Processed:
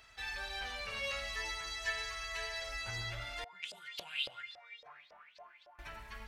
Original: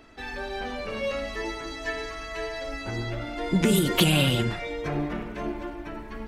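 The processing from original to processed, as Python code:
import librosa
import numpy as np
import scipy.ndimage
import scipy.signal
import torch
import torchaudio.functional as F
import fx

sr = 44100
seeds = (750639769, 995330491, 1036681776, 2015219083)

y = scipy.signal.sosfilt(scipy.signal.butter(2, 46.0, 'highpass', fs=sr, output='sos'), x)
y = fx.tone_stack(y, sr, knobs='10-0-10')
y = fx.filter_lfo_bandpass(y, sr, shape='saw_up', hz=3.6, low_hz=550.0, high_hz=5100.0, q=7.2, at=(3.44, 5.79))
y = y * librosa.db_to_amplitude(1.0)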